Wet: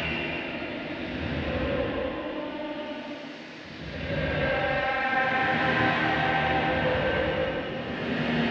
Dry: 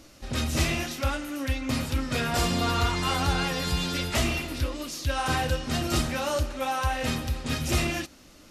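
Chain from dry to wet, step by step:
harmonic generator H 8 −12 dB, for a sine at −12 dBFS
loudspeaker in its box 130–3,100 Hz, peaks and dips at 610 Hz +3 dB, 1,200 Hz −6 dB, 1,800 Hz +5 dB
extreme stretch with random phases 6.2×, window 0.25 s, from 0:04.38

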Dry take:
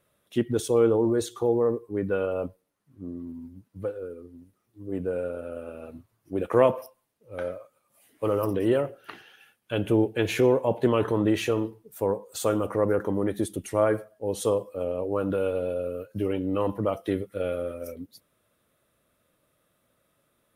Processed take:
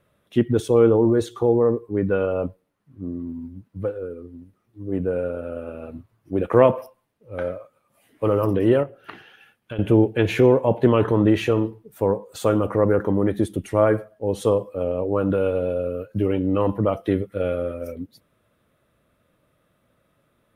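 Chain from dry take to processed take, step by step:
bass and treble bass +4 dB, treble −9 dB
0:08.83–0:09.79: downward compressor 5 to 1, threshold −36 dBFS, peak gain reduction 13 dB
level +4.5 dB

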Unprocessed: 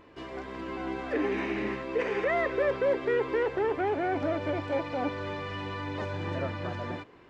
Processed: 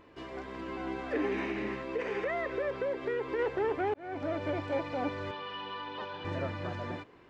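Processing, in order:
0:01.48–0:03.39: downward compressor, threshold −27 dBFS, peak gain reduction 5.5 dB
0:03.94–0:04.54: fade in equal-power
0:05.31–0:06.25: loudspeaker in its box 280–4,700 Hz, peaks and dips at 320 Hz −9 dB, 640 Hz −7 dB, 970 Hz +4 dB, 2,100 Hz −8 dB, 3,100 Hz +7 dB
level −2.5 dB

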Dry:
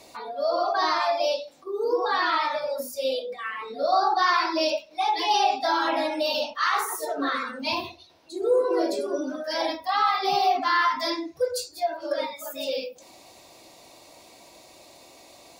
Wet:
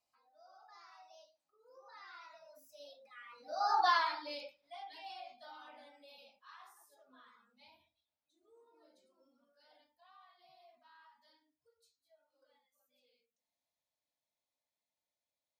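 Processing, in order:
source passing by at 0:03.83, 28 m/s, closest 3 metres
parametric band 380 Hz −14 dB 0.69 octaves
mains-hum notches 60/120/180/240/300 Hz
level −4.5 dB

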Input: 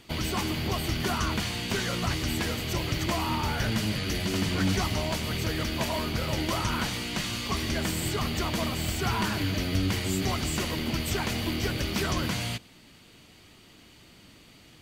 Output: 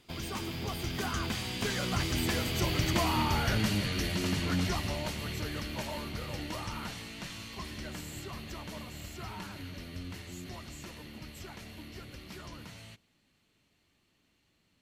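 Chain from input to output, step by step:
source passing by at 0:02.97, 21 m/s, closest 25 metres

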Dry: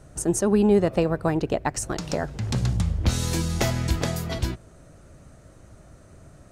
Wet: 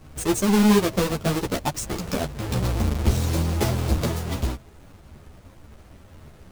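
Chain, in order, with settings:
each half-wave held at its own peak
dynamic equaliser 1,700 Hz, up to −4 dB, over −33 dBFS, Q 1
string-ensemble chorus

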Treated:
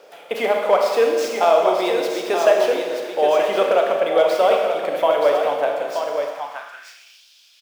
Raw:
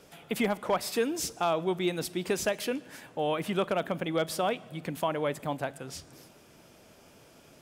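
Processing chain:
running median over 5 samples
on a send: single-tap delay 927 ms −6.5 dB
on the sum: four-comb reverb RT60 1.7 s, combs from 27 ms, DRR 1.5 dB
high-pass filter sweep 540 Hz → 3,700 Hz, 0:06.22–0:07.26
level +6 dB

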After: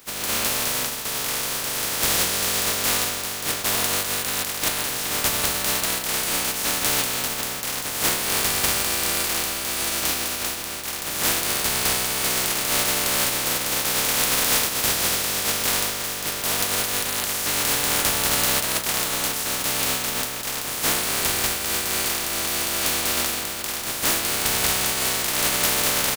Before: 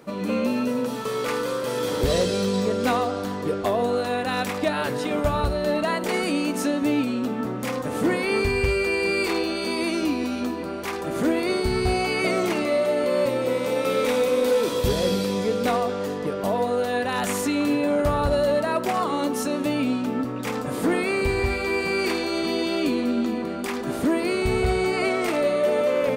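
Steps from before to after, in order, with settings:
compressing power law on the bin magnitudes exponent 0.14
double-tracking delay 39 ms −13.5 dB

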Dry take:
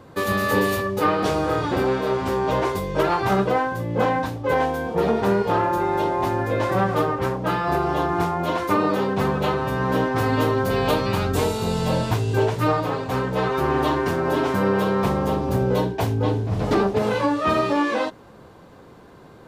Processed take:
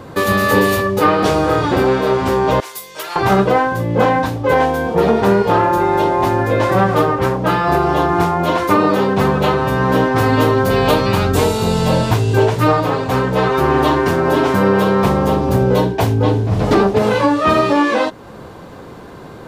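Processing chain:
0:02.60–0:03.16: first difference
in parallel at −1 dB: downward compressor, threshold −35 dBFS, peak gain reduction 18 dB
on the sum: level +6 dB

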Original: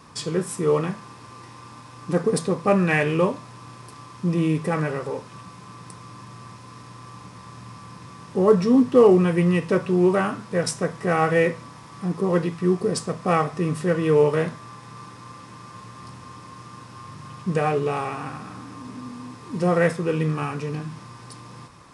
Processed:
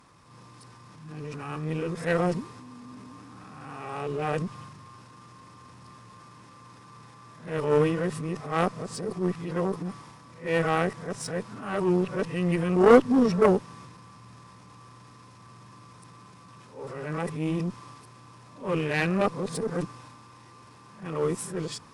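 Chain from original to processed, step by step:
played backwards from end to start
harmonic generator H 3 −12 dB, 8 −44 dB, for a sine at −4 dBFS
transient designer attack −7 dB, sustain +5 dB
level +4 dB

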